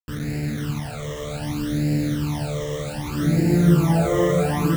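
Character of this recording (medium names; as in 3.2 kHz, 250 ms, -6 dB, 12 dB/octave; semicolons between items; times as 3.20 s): a quantiser's noise floor 6-bit, dither none; phasing stages 12, 0.65 Hz, lowest notch 250–1100 Hz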